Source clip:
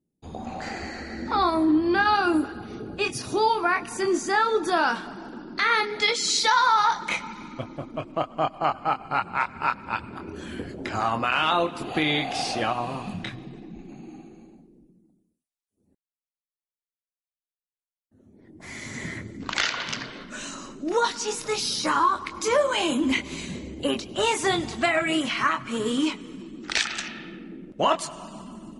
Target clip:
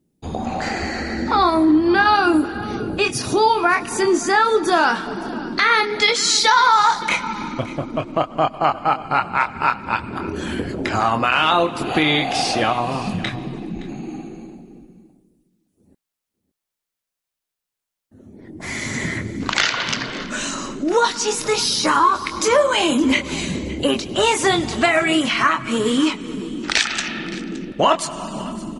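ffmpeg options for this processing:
-filter_complex "[0:a]asplit=2[a][b];[b]acompressor=threshold=-34dB:ratio=6,volume=3dB[c];[a][c]amix=inputs=2:normalize=0,aecho=1:1:568:0.119,volume=4dB"

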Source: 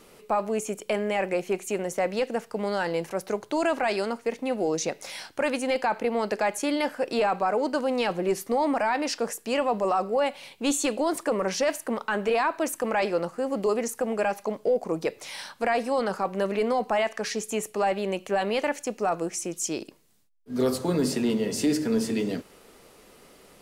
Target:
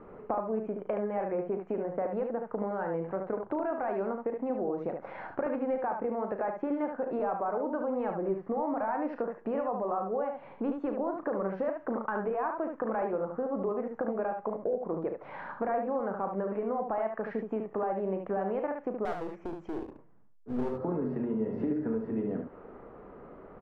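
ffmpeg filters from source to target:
-filter_complex "[0:a]lowpass=f=1.4k:w=0.5412,lowpass=f=1.4k:w=1.3066,acompressor=threshold=-35dB:ratio=6,asettb=1/sr,asplit=3[a][b][c];[a]atrim=end=19.054[d];[b]atrim=start=19.05:end=20.71,asetpts=PTS-STARTPTS,afade=t=in:d=0.004:c=qsin,afade=t=out:st=1.656:d=0.004:c=qsin,aeval=exprs='clip(val(0),-1,0.00631)':c=same[e];[c]atrim=start=20.706[f];[d][e]acrossfade=d=0.004:c1=hsin:c2=qsin[g];[g][f]acrossfade=d=0.004:c1=qsin:c2=hsin,asplit=2[h][i];[i]aecho=0:1:36|73:0.299|0.531[j];[h][j]amix=inputs=2:normalize=0,volume=4.5dB"

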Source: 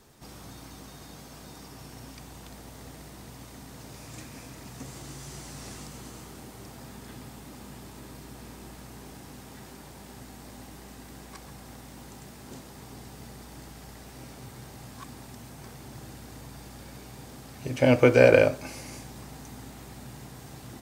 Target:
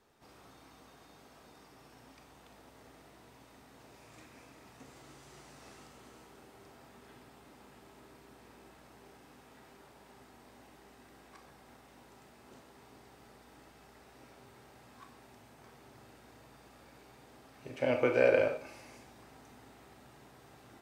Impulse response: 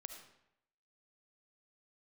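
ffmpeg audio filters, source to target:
-filter_complex "[0:a]bass=f=250:g=-9,treble=f=4k:g=-9[a];[1:a]atrim=start_sample=2205,asetrate=88200,aresample=44100[b];[a][b]afir=irnorm=-1:irlink=0,volume=3dB"

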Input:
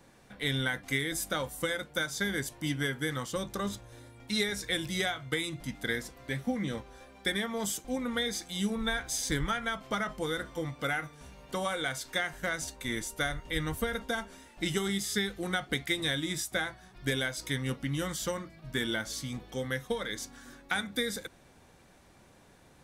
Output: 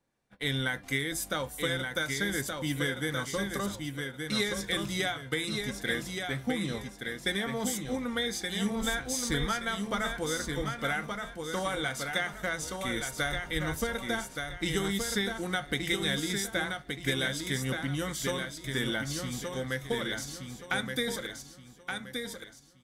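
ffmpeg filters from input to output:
-af "agate=range=-21dB:threshold=-47dB:ratio=16:detection=peak,aecho=1:1:1173|2346|3519|4692:0.562|0.18|0.0576|0.0184"

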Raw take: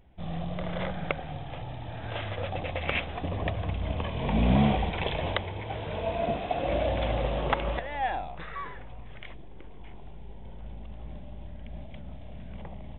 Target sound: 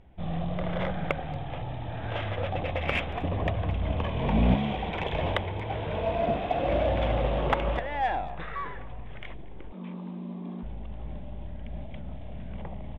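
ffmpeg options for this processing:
-filter_complex "[0:a]asettb=1/sr,asplit=3[a][b][c];[a]atrim=end=4.544[d];[b]atrim=start=4.54:end=5.13,asetpts=PTS-STARTPTS,afade=t=in:d=0.004:c=qsin,afade=t=out:st=0.586:d=0.004:c=qsin,acrossover=split=150|2400[e][f][g];[e]acompressor=threshold=-39dB:ratio=4[h];[f]acompressor=threshold=-31dB:ratio=4[i];[g]acompressor=threshold=-40dB:ratio=4[j];[h][i][j]amix=inputs=3:normalize=0[k];[c]atrim=start=5.126[l];[d][k]acrossfade=d=0.004:c1=hsin:c2=qsin[m];[m][l]acrossfade=d=0.004:c1=qsin:c2=hsin,asettb=1/sr,asplit=3[n][o][p];[n]atrim=end=9.724[q];[o]atrim=start=9.72:end=10.63,asetpts=PTS-STARTPTS,afade=t=in:d=0.004:c=qsin,afade=t=out:st=0.906:d=0.004:c=qsin,afreqshift=180[r];[p]atrim=start=10.626[s];[q][r]acrossfade=d=0.004:c1=hsin:c2=qsin[t];[t][s]acrossfade=d=0.004:c1=qsin:c2=hsin,aemphasis=mode=reproduction:type=50fm,asplit=2[u][v];[v]asoftclip=type=tanh:threshold=-29.5dB,volume=-7dB[w];[u][w]amix=inputs=2:normalize=0,asplit=2[x][y];[y]adelay=230,highpass=300,lowpass=3.4k,asoftclip=type=hard:threshold=-20dB,volume=-21dB[z];[x][z]amix=inputs=2:normalize=0"

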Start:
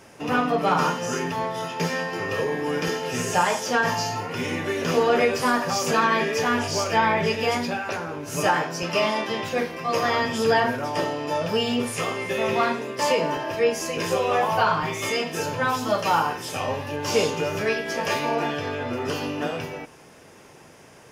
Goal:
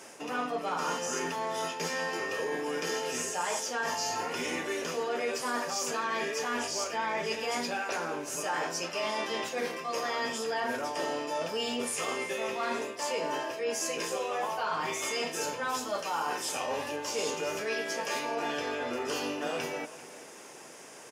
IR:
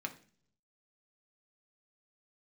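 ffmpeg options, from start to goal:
-filter_complex "[0:a]highpass=280,equalizer=f=7.8k:t=o:w=0.97:g=8,areverse,acompressor=threshold=-30dB:ratio=6,areverse,asplit=2[a][b];[b]adelay=390.7,volume=-16dB,highshelf=f=4k:g=-8.79[c];[a][c]amix=inputs=2:normalize=0"

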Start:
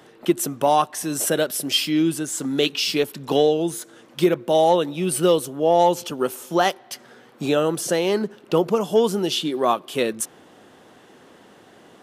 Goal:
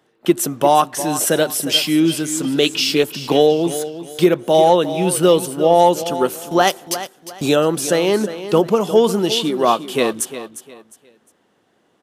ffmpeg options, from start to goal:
-filter_complex "[0:a]asettb=1/sr,asplit=3[a][b][c];[a]atrim=end=6.674[d];[b]atrim=start=6.67:end=7.56,asetpts=PTS-STARTPTS,afade=t=in:d=0.004:c=qsin,afade=t=out:st=0.886:d=0.004:c=qsin,bass=f=250:g=1,treble=f=4k:g=8[e];[c]atrim=start=7.556[f];[d][e]acrossfade=d=0.004:c1=hsin:c2=qsin[g];[g][f]acrossfade=d=0.004:c1=qsin:c2=hsin,agate=range=-17dB:threshold=-39dB:ratio=16:detection=peak,aecho=1:1:355|710|1065:0.237|0.0688|0.0199,volume=4.5dB"

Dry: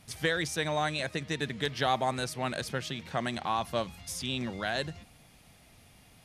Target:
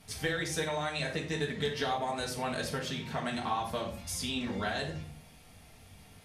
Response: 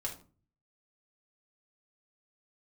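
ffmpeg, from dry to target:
-filter_complex "[0:a]acompressor=threshold=-31dB:ratio=6[a];[1:a]atrim=start_sample=2205,asetrate=35721,aresample=44100[b];[a][b]afir=irnorm=-1:irlink=0"

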